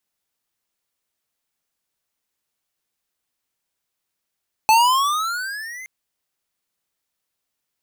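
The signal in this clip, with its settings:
pitch glide with a swell square, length 1.17 s, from 863 Hz, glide +15.5 semitones, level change −23.5 dB, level −12 dB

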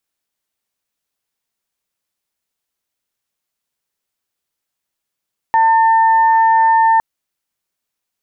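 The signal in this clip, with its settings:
steady harmonic partials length 1.46 s, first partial 899 Hz, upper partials −12 dB, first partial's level −8.5 dB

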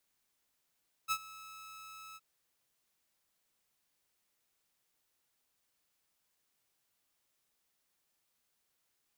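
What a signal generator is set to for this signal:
note with an ADSR envelope saw 1,300 Hz, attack 35 ms, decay 61 ms, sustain −20 dB, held 1.08 s, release 37 ms −26 dBFS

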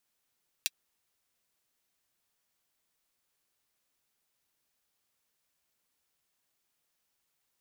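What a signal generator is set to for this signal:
closed synth hi-hat, high-pass 2,900 Hz, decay 0.04 s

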